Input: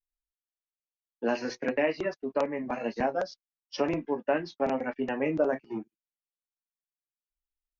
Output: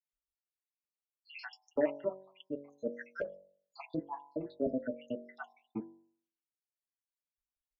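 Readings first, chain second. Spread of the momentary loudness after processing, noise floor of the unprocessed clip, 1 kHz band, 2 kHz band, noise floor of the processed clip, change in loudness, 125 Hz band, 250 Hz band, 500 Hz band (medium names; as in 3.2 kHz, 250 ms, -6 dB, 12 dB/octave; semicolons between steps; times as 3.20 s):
18 LU, under -85 dBFS, -14.0 dB, -11.5 dB, under -85 dBFS, -9.0 dB, -9.0 dB, -8.0 dB, -9.0 dB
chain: random holes in the spectrogram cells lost 84%; de-hum 47.47 Hz, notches 22; low-pass that closes with the level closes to 1.2 kHz, closed at -32 dBFS; comb of notches 180 Hz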